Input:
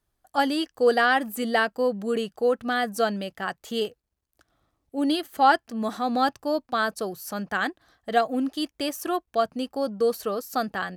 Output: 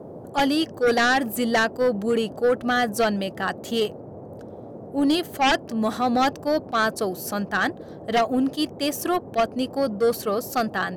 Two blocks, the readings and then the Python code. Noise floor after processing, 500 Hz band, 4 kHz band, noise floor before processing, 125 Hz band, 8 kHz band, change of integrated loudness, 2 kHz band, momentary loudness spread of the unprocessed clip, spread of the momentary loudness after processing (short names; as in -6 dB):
-40 dBFS, +2.5 dB, +3.5 dB, -79 dBFS, n/a, +5.5 dB, +2.5 dB, +2.5 dB, 10 LU, 8 LU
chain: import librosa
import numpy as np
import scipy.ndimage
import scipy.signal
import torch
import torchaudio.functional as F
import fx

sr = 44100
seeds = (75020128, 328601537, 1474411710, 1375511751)

y = fx.fold_sine(x, sr, drive_db=10, ceiling_db=-6.0)
y = fx.dmg_noise_band(y, sr, seeds[0], low_hz=87.0, high_hz=630.0, level_db=-30.0)
y = fx.attack_slew(y, sr, db_per_s=410.0)
y = y * librosa.db_to_amplitude(-9.0)